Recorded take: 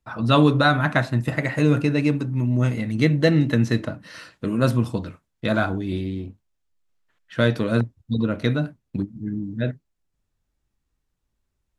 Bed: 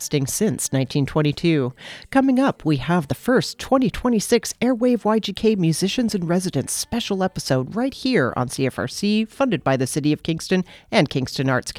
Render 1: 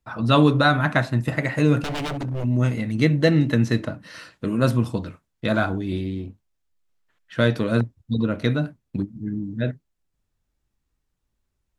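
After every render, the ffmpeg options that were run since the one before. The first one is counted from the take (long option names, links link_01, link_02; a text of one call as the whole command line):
ffmpeg -i in.wav -filter_complex "[0:a]asplit=3[link_01][link_02][link_03];[link_01]afade=type=out:start_time=1.81:duration=0.02[link_04];[link_02]aeval=exprs='0.075*(abs(mod(val(0)/0.075+3,4)-2)-1)':channel_layout=same,afade=type=in:start_time=1.81:duration=0.02,afade=type=out:start_time=2.43:duration=0.02[link_05];[link_03]afade=type=in:start_time=2.43:duration=0.02[link_06];[link_04][link_05][link_06]amix=inputs=3:normalize=0" out.wav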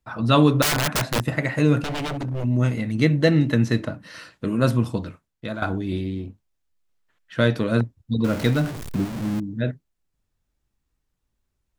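ffmpeg -i in.wav -filter_complex "[0:a]asettb=1/sr,asplit=3[link_01][link_02][link_03];[link_01]atrim=end=0.624[link_04];[link_02]atrim=start=0.62:end=1.24,asetpts=PTS-STARTPTS,afade=type=in:duration=0.004:curve=qsin,afade=type=out:start_time=0.616:duration=0.004:curve=qsin,aeval=exprs='(mod(6.31*val(0)+1,2)-1)/6.31':channel_layout=same[link_05];[link_03]atrim=start=1.236[link_06];[link_04][link_05]acrossfade=duration=0.004:curve1=hsin:curve2=qsin[link_07];[link_07][link_06]acrossfade=duration=0.004:curve1=qsin:curve2=hsin,asettb=1/sr,asplit=3[link_08][link_09][link_10];[link_08]atrim=end=8.244[link_11];[link_09]atrim=start=8.24:end=9.4,asetpts=PTS-STARTPTS,afade=type=in:duration=0.004:curve=qsin,afade=type=out:start_time=1.156:duration=0.004:curve=qsin,aeval=exprs='val(0)+0.5*0.0447*sgn(val(0))':channel_layout=same[link_12];[link_10]atrim=start=9.396[link_13];[link_11][link_12]acrossfade=duration=0.004:curve1=hsin:curve2=qsin[link_14];[link_14][link_13]acrossfade=duration=0.004:curve1=qsin:curve2=hsin,asplit=2[link_15][link_16];[link_15]atrim=end=5.62,asetpts=PTS-STARTPTS,afade=type=out:start_time=5.08:duration=0.54:silence=0.223872[link_17];[link_16]atrim=start=5.62,asetpts=PTS-STARTPTS,afade=type=in:duration=0.004:curve=hsin:silence=0.223872[link_18];[link_17][link_18]concat=n=2:v=0:a=1" out.wav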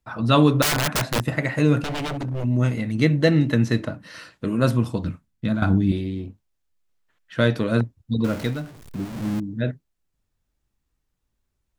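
ffmpeg -i in.wav -filter_complex "[0:a]asettb=1/sr,asplit=3[link_01][link_02][link_03];[link_01]atrim=end=5.044[link_04];[link_02]atrim=start=5.04:end=5.92,asetpts=PTS-STARTPTS,afade=type=in:duration=0.004:curve=qsin,afade=type=out:start_time=0.876:duration=0.004:curve=qsin,lowshelf=frequency=310:width_type=q:width=1.5:gain=8.5[link_05];[link_03]atrim=start=5.916[link_06];[link_04][link_05]acrossfade=duration=0.004:curve1=hsin:curve2=qsin[link_07];[link_07][link_06]acrossfade=duration=0.004:curve1=qsin:curve2=hsin,asplit=3[link_08][link_09][link_10];[link_08]atrim=end=8.66,asetpts=PTS-STARTPTS,afade=type=out:start_time=8.21:duration=0.45:silence=0.251189[link_11];[link_09]atrim=start=8.66:end=8.83,asetpts=PTS-STARTPTS,volume=-12dB[link_12];[link_10]atrim=start=8.83,asetpts=PTS-STARTPTS,afade=type=in:duration=0.45:silence=0.251189[link_13];[link_11][link_12][link_13]concat=n=3:v=0:a=1" out.wav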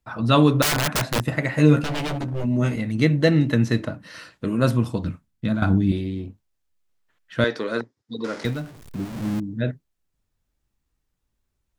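ffmpeg -i in.wav -filter_complex "[0:a]asettb=1/sr,asplit=3[link_01][link_02][link_03];[link_01]atrim=end=1.524[link_04];[link_02]atrim=start=1.52:end=2.76,asetpts=PTS-STARTPTS,afade=type=in:duration=0.004:curve=qsin,afade=type=out:start_time=1.236:duration=0.004:curve=qsin,asplit=2[link_05][link_06];[link_06]adelay=13,volume=-5dB[link_07];[link_05][link_07]amix=inputs=2:normalize=0,atrim=end_sample=54684[link_08];[link_03]atrim=start=2.756[link_09];[link_04][link_08]acrossfade=duration=0.004:curve1=hsin:curve2=qsin[link_10];[link_10][link_09]acrossfade=duration=0.004:curve1=qsin:curve2=hsin,asettb=1/sr,asplit=3[link_11][link_12][link_13];[link_11]atrim=end=7.444[link_14];[link_12]atrim=start=7.44:end=8.45,asetpts=PTS-STARTPTS,afade=type=in:duration=0.004:curve=qsin,afade=type=out:start_time=1.006:duration=0.004:curve=qsin,highpass=380,equalizer=frequency=410:width_type=q:width=4:gain=4,equalizer=frequency=640:width_type=q:width=4:gain=-5,equalizer=frequency=1900:width_type=q:width=4:gain=4,equalizer=frequency=2700:width_type=q:width=4:gain=-5,equalizer=frequency=5100:width_type=q:width=4:gain=5,equalizer=frequency=8100:width_type=q:width=4:gain=-4,lowpass=frequency=8700:width=0.5412,lowpass=frequency=8700:width=1.3066[link_15];[link_13]atrim=start=8.446[link_16];[link_14][link_15]acrossfade=duration=0.004:curve1=hsin:curve2=qsin[link_17];[link_17][link_16]acrossfade=duration=0.004:curve1=qsin:curve2=hsin" out.wav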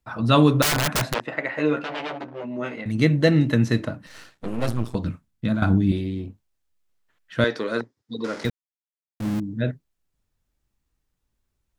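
ffmpeg -i in.wav -filter_complex "[0:a]asettb=1/sr,asplit=3[link_01][link_02][link_03];[link_01]atrim=end=1.144[link_04];[link_02]atrim=start=1.14:end=2.86,asetpts=PTS-STARTPTS,afade=type=in:duration=0.004:curve=qsin,afade=type=out:start_time=1.716:duration=0.004:curve=qsin,highpass=400,lowpass=3000[link_05];[link_03]atrim=start=2.856[link_06];[link_04][link_05]acrossfade=duration=0.004:curve1=hsin:curve2=qsin[link_07];[link_07][link_06]acrossfade=duration=0.004:curve1=qsin:curve2=hsin,asettb=1/sr,asplit=3[link_08][link_09][link_10];[link_08]atrim=end=4.064[link_11];[link_09]atrim=start=4.06:end=4.95,asetpts=PTS-STARTPTS,afade=type=in:duration=0.004:curve=qsin,afade=type=out:start_time=0.886:duration=0.004:curve=qsin,aeval=exprs='max(val(0),0)':channel_layout=same[link_12];[link_10]atrim=start=4.946[link_13];[link_11][link_12]acrossfade=duration=0.004:curve1=hsin:curve2=qsin[link_14];[link_14][link_13]acrossfade=duration=0.004:curve1=qsin:curve2=hsin,asplit=3[link_15][link_16][link_17];[link_15]atrim=end=8.5,asetpts=PTS-STARTPTS,afade=type=out:start_time=8.496:duration=0.004:curve=hsin[link_18];[link_16]atrim=start=8.5:end=9.2,asetpts=PTS-STARTPTS,volume=0[link_19];[link_17]atrim=start=9.2,asetpts=PTS-STARTPTS,afade=type=in:duration=0.004:curve=hsin[link_20];[link_18][link_19][link_20]concat=n=3:v=0:a=1" out.wav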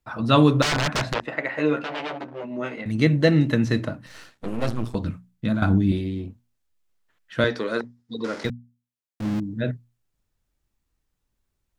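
ffmpeg -i in.wav -filter_complex "[0:a]acrossover=split=6900[link_01][link_02];[link_02]acompressor=threshold=-52dB:ratio=4:attack=1:release=60[link_03];[link_01][link_03]amix=inputs=2:normalize=0,bandreject=frequency=60:width_type=h:width=6,bandreject=frequency=120:width_type=h:width=6,bandreject=frequency=180:width_type=h:width=6,bandreject=frequency=240:width_type=h:width=6" out.wav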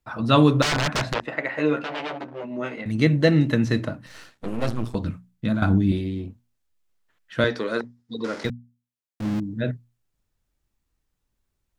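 ffmpeg -i in.wav -af anull out.wav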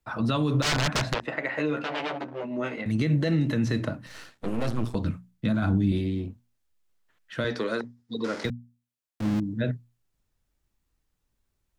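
ffmpeg -i in.wav -filter_complex "[0:a]alimiter=limit=-15dB:level=0:latency=1:release=58,acrossover=split=210|3000[link_01][link_02][link_03];[link_02]acompressor=threshold=-25dB:ratio=6[link_04];[link_01][link_04][link_03]amix=inputs=3:normalize=0" out.wav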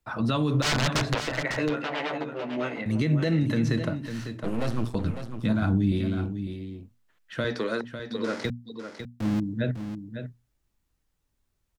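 ffmpeg -i in.wav -af "aecho=1:1:551:0.355" out.wav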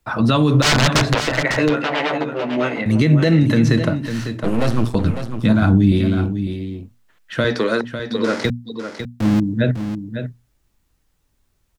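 ffmpeg -i in.wav -af "volume=10dB,alimiter=limit=-2dB:level=0:latency=1" out.wav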